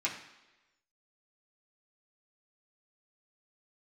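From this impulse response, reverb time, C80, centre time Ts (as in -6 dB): 1.1 s, 10.5 dB, 26 ms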